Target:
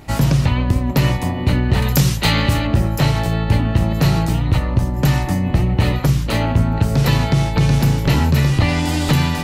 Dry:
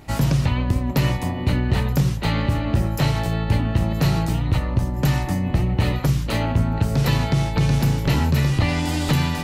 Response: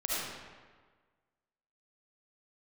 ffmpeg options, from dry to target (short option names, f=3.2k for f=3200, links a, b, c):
-filter_complex "[0:a]asettb=1/sr,asplit=3[a][b][c];[a]atrim=end=1.824[d];[b]atrim=start=1.82:end=2.67,asetpts=PTS-STARTPTS,afade=t=in:d=0.004:c=qsin,afade=t=out:st=0.846:d=0.004:c=qsin,highshelf=f=2.1k:g=10.5[e];[c]atrim=start=2.666[f];[d][e]acrossfade=d=0.004:c1=hsin:c2=qsin[g];[g][f]acrossfade=d=0.004:c1=qsin:c2=hsin,volume=4dB"